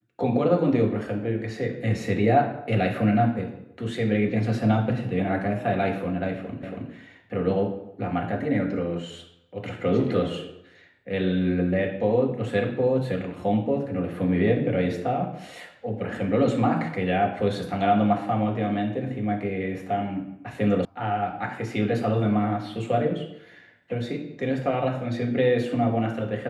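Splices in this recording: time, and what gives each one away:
6.63 s: repeat of the last 0.28 s
20.85 s: sound stops dead

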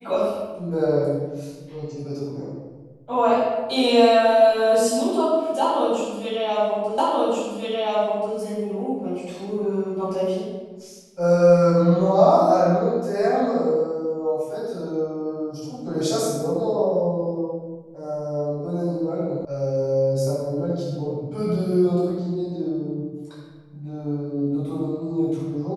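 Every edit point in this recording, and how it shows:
6.98 s: repeat of the last 1.38 s
19.45 s: sound stops dead

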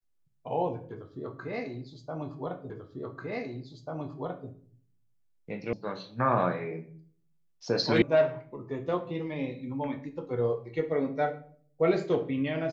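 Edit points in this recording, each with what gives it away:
2.70 s: repeat of the last 1.79 s
5.73 s: sound stops dead
8.02 s: sound stops dead

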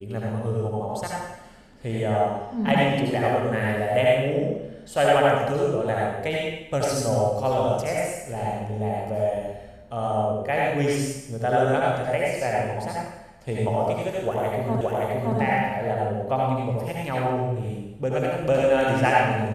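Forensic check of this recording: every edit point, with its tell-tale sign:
14.81 s: repeat of the last 0.57 s

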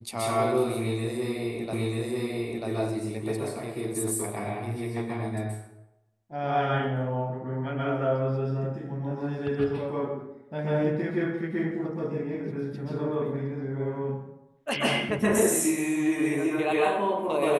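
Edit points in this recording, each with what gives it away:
1.73 s: repeat of the last 0.94 s

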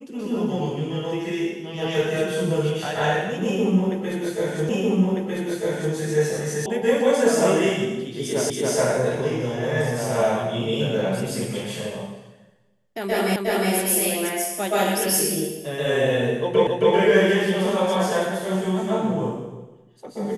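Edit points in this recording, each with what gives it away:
4.69 s: repeat of the last 1.25 s
6.66 s: sound stops dead
8.50 s: repeat of the last 0.28 s
13.36 s: repeat of the last 0.36 s
16.67 s: repeat of the last 0.27 s

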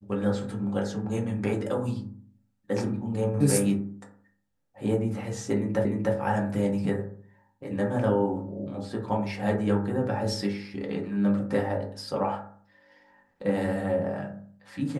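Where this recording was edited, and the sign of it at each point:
5.85 s: repeat of the last 0.3 s

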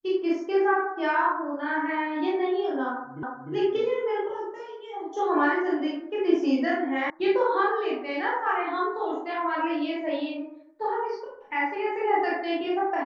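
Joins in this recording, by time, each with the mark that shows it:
3.23 s: repeat of the last 0.3 s
7.10 s: sound stops dead

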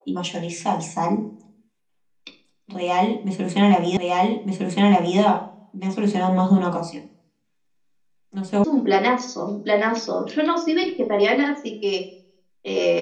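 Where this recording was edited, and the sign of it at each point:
3.97 s: repeat of the last 1.21 s
8.64 s: sound stops dead

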